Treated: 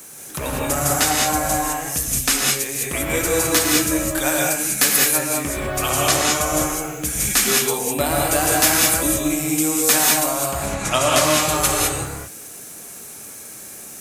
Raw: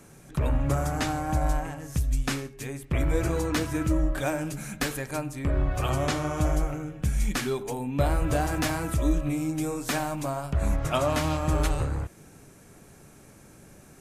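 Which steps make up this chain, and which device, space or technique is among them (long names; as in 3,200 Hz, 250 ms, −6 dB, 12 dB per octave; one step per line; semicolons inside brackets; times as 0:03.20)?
turntable without a phono preamp (RIAA equalisation recording; white noise bed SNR 30 dB)
parametric band 320 Hz +2 dB
0:10.55–0:11.23: low-pass filter 5,800 Hz → 12,000 Hz 12 dB per octave
reverb whose tail is shaped and stops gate 230 ms rising, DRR −1.5 dB
level +6 dB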